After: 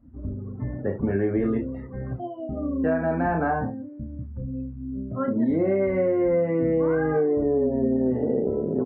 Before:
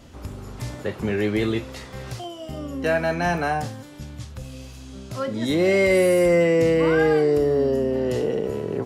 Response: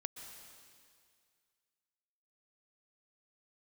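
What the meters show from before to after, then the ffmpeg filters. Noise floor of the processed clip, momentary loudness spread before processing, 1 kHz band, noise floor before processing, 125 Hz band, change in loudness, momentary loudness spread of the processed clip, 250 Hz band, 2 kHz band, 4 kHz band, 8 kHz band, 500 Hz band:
−38 dBFS, 20 LU, −2.0 dB, −40 dBFS, −1.5 dB, −4.0 dB, 12 LU, +0.5 dB, −9.0 dB, below −30 dB, below −40 dB, −3.5 dB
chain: -af "aecho=1:1:31|70:0.562|0.251,afftdn=noise_reduction=22:noise_floor=-34,equalizer=frequency=250:width=4.4:gain=9,acompressor=threshold=-19dB:ratio=6,lowpass=frequency=1600:width=0.5412,lowpass=frequency=1600:width=1.3066"

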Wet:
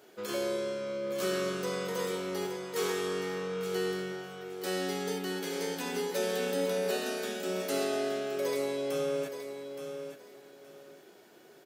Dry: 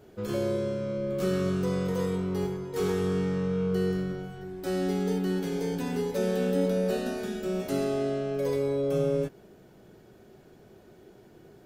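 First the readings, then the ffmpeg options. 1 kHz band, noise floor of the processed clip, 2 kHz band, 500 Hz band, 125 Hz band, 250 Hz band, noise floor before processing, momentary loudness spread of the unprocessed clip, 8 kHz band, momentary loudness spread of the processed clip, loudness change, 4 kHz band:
+0.5 dB, −56 dBFS, +3.5 dB, −3.0 dB, −13.5 dB, −8.5 dB, −55 dBFS, 5 LU, +5.5 dB, 10 LU, −4.5 dB, +5.0 dB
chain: -af "highpass=280,tiltshelf=frequency=890:gain=-5,aecho=1:1:871|1742|2613:0.355|0.0781|0.0172"

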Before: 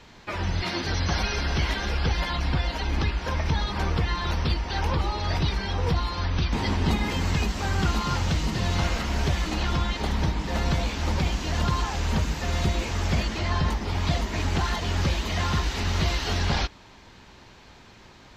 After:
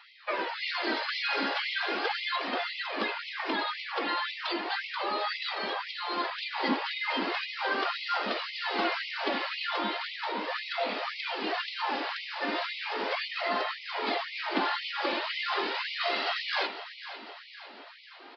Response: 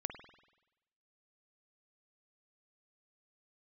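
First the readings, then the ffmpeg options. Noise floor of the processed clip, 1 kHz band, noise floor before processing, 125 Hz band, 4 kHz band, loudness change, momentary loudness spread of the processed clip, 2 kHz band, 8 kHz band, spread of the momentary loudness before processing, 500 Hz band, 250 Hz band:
−49 dBFS, −0.5 dB, −50 dBFS, below −30 dB, −1.0 dB, −4.5 dB, 4 LU, +1.0 dB, below −20 dB, 2 LU, −1.5 dB, −8.0 dB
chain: -filter_complex "[0:a]asplit=2[link_01][link_02];[1:a]atrim=start_sample=2205,atrim=end_sample=6174[link_03];[link_02][link_03]afir=irnorm=-1:irlink=0,volume=6dB[link_04];[link_01][link_04]amix=inputs=2:normalize=0,flanger=delay=1.5:depth=2.1:regen=37:speed=0.37:shape=sinusoidal,aresample=11025,aresample=44100,highshelf=frequency=3700:gain=-6.5,aecho=1:1:502|1004|1506|2008|2510|3012:0.224|0.128|0.0727|0.0415|0.0236|0.0135,afftfilt=real='re*gte(b*sr/1024,210*pow(2000/210,0.5+0.5*sin(2*PI*1.9*pts/sr)))':imag='im*gte(b*sr/1024,210*pow(2000/210,0.5+0.5*sin(2*PI*1.9*pts/sr)))':win_size=1024:overlap=0.75,volume=-2.5dB"

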